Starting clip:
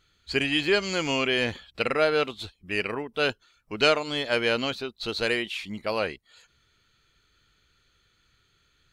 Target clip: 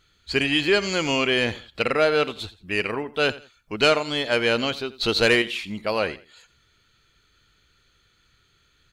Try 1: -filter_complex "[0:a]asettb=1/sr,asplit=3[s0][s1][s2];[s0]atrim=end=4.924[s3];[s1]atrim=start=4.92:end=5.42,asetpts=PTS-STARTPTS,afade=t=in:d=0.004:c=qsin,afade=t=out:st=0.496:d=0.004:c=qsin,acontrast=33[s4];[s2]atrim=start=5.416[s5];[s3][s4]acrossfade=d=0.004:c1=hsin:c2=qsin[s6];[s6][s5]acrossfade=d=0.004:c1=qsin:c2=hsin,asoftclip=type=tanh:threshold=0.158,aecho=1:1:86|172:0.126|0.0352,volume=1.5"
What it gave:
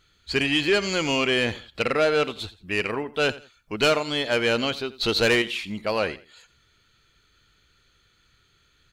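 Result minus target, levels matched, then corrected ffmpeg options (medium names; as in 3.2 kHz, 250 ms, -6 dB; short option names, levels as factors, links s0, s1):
saturation: distortion +9 dB
-filter_complex "[0:a]asettb=1/sr,asplit=3[s0][s1][s2];[s0]atrim=end=4.924[s3];[s1]atrim=start=4.92:end=5.42,asetpts=PTS-STARTPTS,afade=t=in:d=0.004:c=qsin,afade=t=out:st=0.496:d=0.004:c=qsin,acontrast=33[s4];[s2]atrim=start=5.416[s5];[s3][s4]acrossfade=d=0.004:c1=hsin:c2=qsin[s6];[s6][s5]acrossfade=d=0.004:c1=qsin:c2=hsin,asoftclip=type=tanh:threshold=0.335,aecho=1:1:86|172:0.126|0.0352,volume=1.5"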